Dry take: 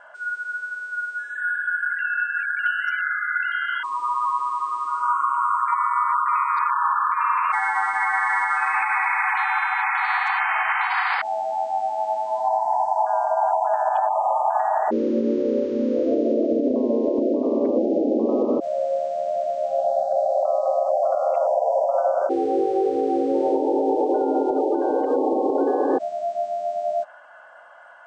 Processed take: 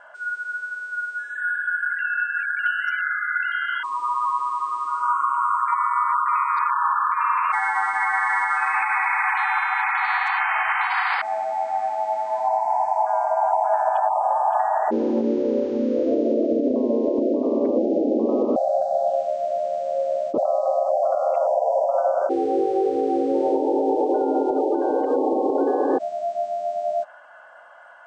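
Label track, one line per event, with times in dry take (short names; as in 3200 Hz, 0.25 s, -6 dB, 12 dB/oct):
8.610000	9.400000	echo throw 0.51 s, feedback 70%, level -13 dB
12.950000	14.070000	echo throw 0.57 s, feedback 35%, level -9.5 dB
18.560000	20.380000	reverse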